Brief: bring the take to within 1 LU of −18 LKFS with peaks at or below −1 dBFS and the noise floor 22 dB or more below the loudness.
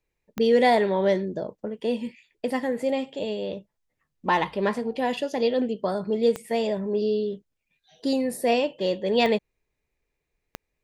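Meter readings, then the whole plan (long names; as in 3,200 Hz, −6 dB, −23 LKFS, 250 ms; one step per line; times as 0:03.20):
number of clicks 4; integrated loudness −25.5 LKFS; sample peak −9.5 dBFS; target loudness −18.0 LKFS
→ click removal
level +7.5 dB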